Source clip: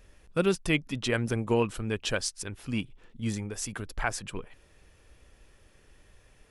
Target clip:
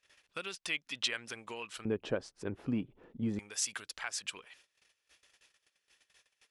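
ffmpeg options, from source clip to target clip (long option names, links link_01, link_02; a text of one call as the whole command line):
ffmpeg -i in.wav -af "agate=range=-19dB:threshold=-54dB:ratio=16:detection=peak,acompressor=threshold=-32dB:ratio=6,asetnsamples=nb_out_samples=441:pad=0,asendcmd='1.85 bandpass f 390;3.39 bandpass f 4500',bandpass=frequency=3500:width_type=q:width=0.75:csg=0,volume=6dB" out.wav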